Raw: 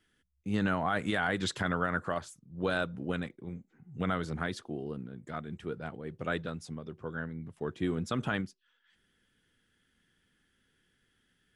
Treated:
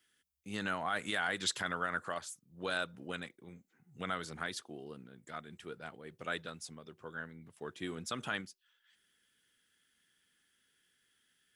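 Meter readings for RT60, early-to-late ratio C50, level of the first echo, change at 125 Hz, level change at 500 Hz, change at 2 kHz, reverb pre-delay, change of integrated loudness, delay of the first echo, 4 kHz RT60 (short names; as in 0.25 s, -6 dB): none, none, none, -12.5 dB, -7.5 dB, -2.5 dB, none, -4.5 dB, none, none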